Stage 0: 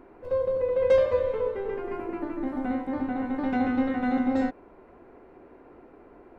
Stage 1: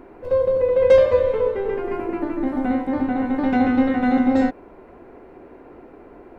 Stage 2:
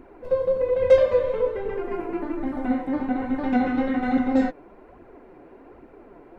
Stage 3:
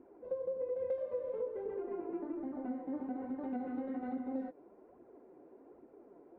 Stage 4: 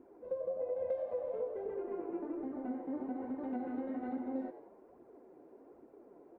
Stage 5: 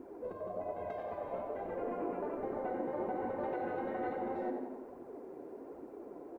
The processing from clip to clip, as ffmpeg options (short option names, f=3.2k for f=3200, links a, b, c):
-af "equalizer=f=1.2k:t=o:w=0.77:g=-2,volume=7.5dB"
-af "flanger=delay=0.3:depth=6.9:regen=35:speed=1.2:shape=triangular"
-af "acompressor=threshold=-24dB:ratio=6,bandpass=f=400:t=q:w=0.9:csg=0,volume=-9dB"
-filter_complex "[0:a]asplit=5[a][b][c][d][e];[b]adelay=92,afreqshift=95,volume=-13dB[f];[c]adelay=184,afreqshift=190,volume=-20.7dB[g];[d]adelay=276,afreqshift=285,volume=-28.5dB[h];[e]adelay=368,afreqshift=380,volume=-36.2dB[i];[a][f][g][h][i]amix=inputs=5:normalize=0"
-af "aecho=1:1:92|184|276|368|460|552|644:0.316|0.183|0.106|0.0617|0.0358|0.0208|0.012,afftfilt=real='re*lt(hypot(re,im),0.0631)':imag='im*lt(hypot(re,im),0.0631)':win_size=1024:overlap=0.75,volume=9dB"